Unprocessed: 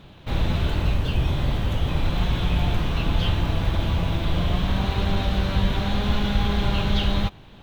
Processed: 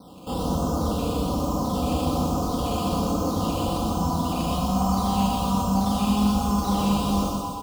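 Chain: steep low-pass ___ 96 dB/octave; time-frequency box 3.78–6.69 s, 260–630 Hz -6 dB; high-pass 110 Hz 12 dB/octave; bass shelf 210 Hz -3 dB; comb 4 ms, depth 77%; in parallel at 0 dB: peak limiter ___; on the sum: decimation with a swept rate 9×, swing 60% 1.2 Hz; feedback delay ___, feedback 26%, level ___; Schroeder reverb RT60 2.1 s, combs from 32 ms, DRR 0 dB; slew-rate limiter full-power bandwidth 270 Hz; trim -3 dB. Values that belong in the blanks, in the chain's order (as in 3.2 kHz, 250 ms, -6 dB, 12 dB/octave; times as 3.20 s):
1.3 kHz, -26.5 dBFS, 121 ms, -5 dB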